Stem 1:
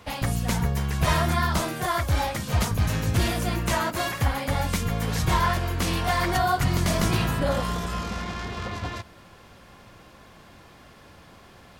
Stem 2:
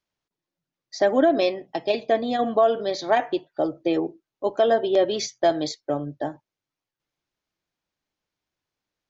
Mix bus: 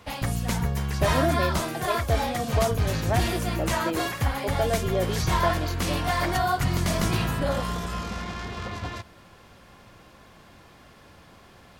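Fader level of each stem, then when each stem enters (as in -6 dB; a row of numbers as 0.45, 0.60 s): -1.5, -7.5 dB; 0.00, 0.00 s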